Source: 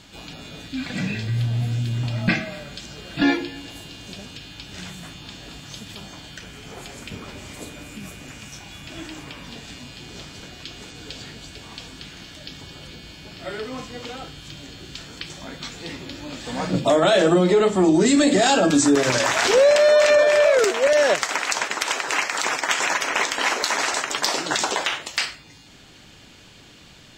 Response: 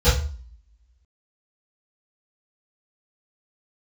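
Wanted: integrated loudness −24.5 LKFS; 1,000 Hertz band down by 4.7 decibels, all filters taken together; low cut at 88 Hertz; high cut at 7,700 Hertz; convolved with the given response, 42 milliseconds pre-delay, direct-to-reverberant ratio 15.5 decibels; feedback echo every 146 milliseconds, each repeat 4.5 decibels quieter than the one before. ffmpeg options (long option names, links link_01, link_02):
-filter_complex "[0:a]highpass=88,lowpass=7700,equalizer=frequency=1000:width_type=o:gain=-6.5,aecho=1:1:146|292|438|584|730|876|1022|1168|1314:0.596|0.357|0.214|0.129|0.0772|0.0463|0.0278|0.0167|0.01,asplit=2[link_01][link_02];[1:a]atrim=start_sample=2205,adelay=42[link_03];[link_02][link_03]afir=irnorm=-1:irlink=0,volume=-35dB[link_04];[link_01][link_04]amix=inputs=2:normalize=0,volume=-5.5dB"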